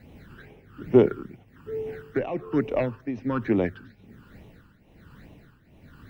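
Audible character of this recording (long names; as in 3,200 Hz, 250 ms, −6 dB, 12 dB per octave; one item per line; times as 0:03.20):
phaser sweep stages 12, 2.3 Hz, lowest notch 650–1,500 Hz
a quantiser's noise floor 12 bits, dither none
tremolo triangle 1.2 Hz, depth 80%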